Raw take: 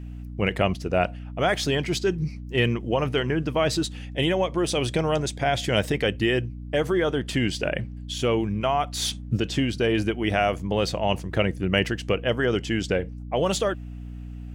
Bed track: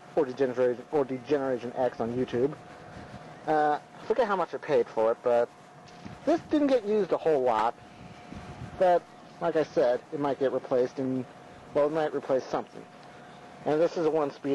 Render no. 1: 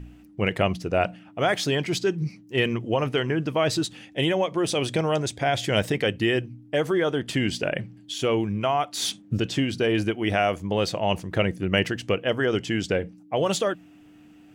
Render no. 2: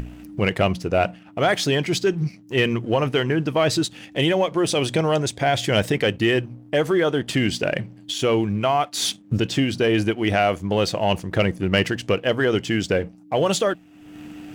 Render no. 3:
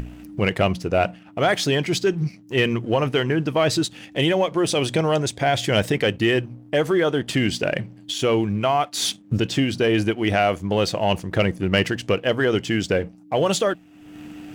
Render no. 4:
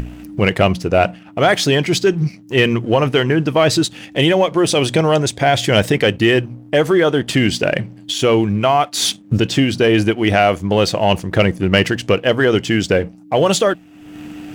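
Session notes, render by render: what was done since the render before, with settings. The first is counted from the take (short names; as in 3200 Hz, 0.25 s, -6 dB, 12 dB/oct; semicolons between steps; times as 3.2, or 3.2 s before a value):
de-hum 60 Hz, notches 4
sample leveller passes 1; upward compressor, threshold -24 dBFS
nothing audible
gain +6 dB; limiter -1 dBFS, peak gain reduction 1 dB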